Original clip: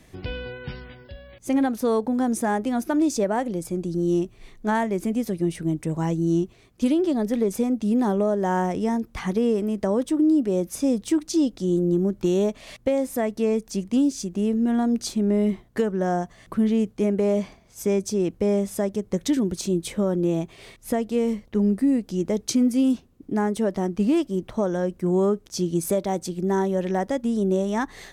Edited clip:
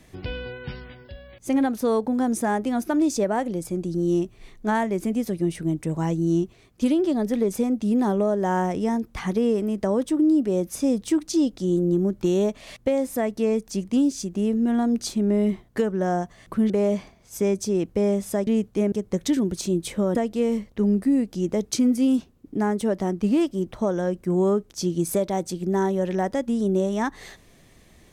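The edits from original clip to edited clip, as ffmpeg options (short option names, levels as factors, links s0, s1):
-filter_complex "[0:a]asplit=5[s0][s1][s2][s3][s4];[s0]atrim=end=16.702[s5];[s1]atrim=start=17.148:end=18.922[s6];[s2]atrim=start=16.698:end=17.152[s7];[s3]atrim=start=18.918:end=20.152[s8];[s4]atrim=start=20.908[s9];[s5][s6]acrossfade=d=0.004:c1=hsin:c2=hsin[s10];[s10][s7]acrossfade=d=0.004:c1=hsin:c2=hsin[s11];[s11][s8]acrossfade=d=0.004:c1=hsin:c2=hsin[s12];[s12][s9]acrossfade=d=0.004:c1=hsin:c2=hsin"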